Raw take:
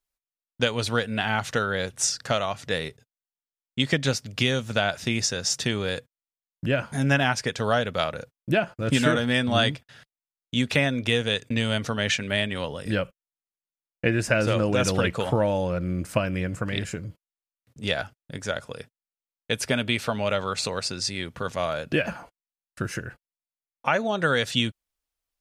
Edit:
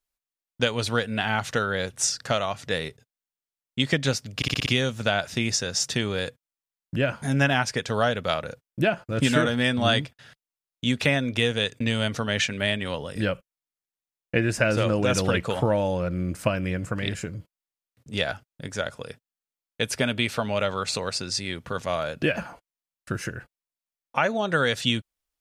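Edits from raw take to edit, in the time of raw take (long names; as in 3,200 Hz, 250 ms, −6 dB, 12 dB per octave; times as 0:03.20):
0:04.36: stutter 0.06 s, 6 plays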